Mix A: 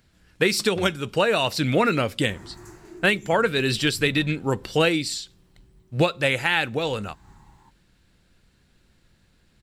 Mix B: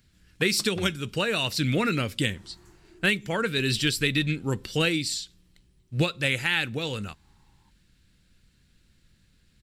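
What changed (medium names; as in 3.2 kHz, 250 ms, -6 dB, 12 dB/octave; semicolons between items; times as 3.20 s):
speech: add peaking EQ 740 Hz -11 dB 1.8 oct; second sound -12.0 dB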